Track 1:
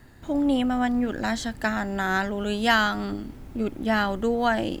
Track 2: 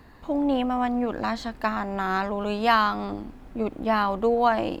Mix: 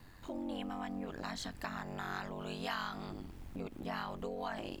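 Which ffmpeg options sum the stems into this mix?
-filter_complex "[0:a]volume=0.422[s0];[1:a]highshelf=f=3600:g=6.5,acompressor=threshold=0.0316:ratio=3,aeval=exprs='val(0)*sin(2*PI*46*n/s)':c=same,volume=0.668,asplit=2[s1][s2];[s2]apad=whole_len=211680[s3];[s0][s3]sidechaincompress=threshold=0.00562:ratio=8:attack=16:release=116[s4];[s4][s1]amix=inputs=2:normalize=0,equalizer=f=490:w=0.35:g=-5.5"

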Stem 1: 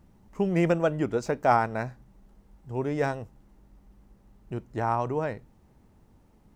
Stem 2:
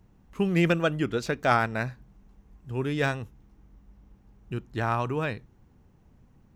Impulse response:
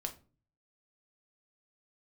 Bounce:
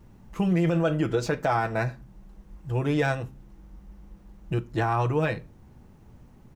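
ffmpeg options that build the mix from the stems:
-filter_complex "[0:a]equalizer=f=120:w=7.1:g=9,volume=1.19,asplit=2[s0][s1];[1:a]adelay=5.7,volume=1.33,asplit=2[s2][s3];[s3]volume=0.398[s4];[s1]apad=whole_len=289398[s5];[s2][s5]sidechaincompress=threshold=0.0447:ratio=8:attack=16:release=939[s6];[2:a]atrim=start_sample=2205[s7];[s4][s7]afir=irnorm=-1:irlink=0[s8];[s0][s6][s8]amix=inputs=3:normalize=0,alimiter=limit=0.178:level=0:latency=1:release=39"

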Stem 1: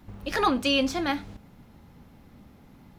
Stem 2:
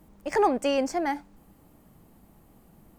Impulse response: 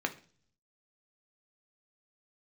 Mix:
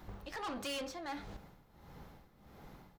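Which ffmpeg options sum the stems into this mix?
-filter_complex "[0:a]tremolo=f=1.5:d=0.8,volume=1.26,asplit=2[s0][s1];[s1]volume=0.158[s2];[1:a]adelay=2.7,volume=0.158,asplit=2[s3][s4];[s4]apad=whole_len=131669[s5];[s0][s5]sidechaincompress=threshold=0.00562:ratio=8:attack=44:release=703[s6];[2:a]atrim=start_sample=2205[s7];[s2][s7]afir=irnorm=-1:irlink=0[s8];[s6][s3][s8]amix=inputs=3:normalize=0,equalizer=f=100:t=o:w=0.67:g=-7,equalizer=f=250:t=o:w=0.67:g=-11,equalizer=f=2500:t=o:w=0.67:g=-4,equalizer=f=10000:t=o:w=0.67:g=-5,asoftclip=type=tanh:threshold=0.0141"

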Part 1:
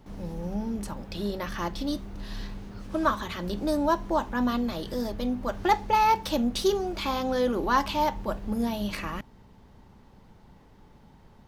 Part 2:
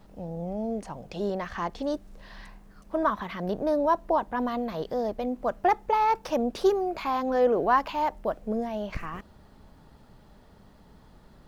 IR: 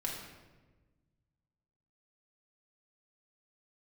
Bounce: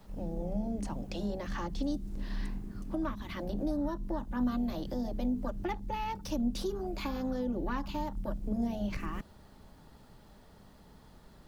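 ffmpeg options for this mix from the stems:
-filter_complex "[0:a]afwtdn=0.0355,lowpass=f=1300:p=1,equalizer=f=80:w=1.2:g=-8,volume=1.19[s0];[1:a]acompressor=threshold=0.0355:ratio=6,volume=0.75[s1];[s0][s1]amix=inputs=2:normalize=0,acrossover=split=230|3000[s2][s3][s4];[s3]acompressor=threshold=0.0126:ratio=6[s5];[s2][s5][s4]amix=inputs=3:normalize=0,highshelf=f=3800:g=6"

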